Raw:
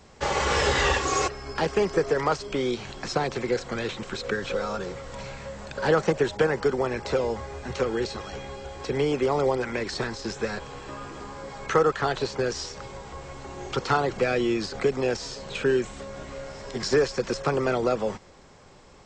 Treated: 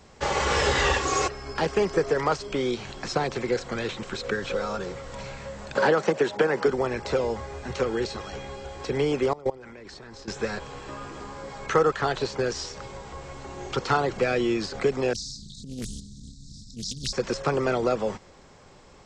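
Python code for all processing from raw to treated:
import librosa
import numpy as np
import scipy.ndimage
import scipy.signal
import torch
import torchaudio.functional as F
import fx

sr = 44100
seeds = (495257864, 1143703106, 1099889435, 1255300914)

y = fx.chain(x, sr, fx.highpass(hz=190.0, slope=12),
    fx.high_shelf(hz=7000.0, db=-5.5),
    fx.band_squash(depth_pct=100), at=(5.75, 6.68))
y = fx.chain(y, sr, fx.high_shelf(hz=2200.0, db=-4.5),
    fx.level_steps(step_db=22), at=(9.33, 10.28))
y = fx.chain(y, sr, fx.transient(attack_db=-12, sustain_db=7),
    fx.brickwall_bandstop(low_hz=270.0, high_hz=3700.0),
    fx.doppler_dist(depth_ms=0.77), at=(15.13, 17.13))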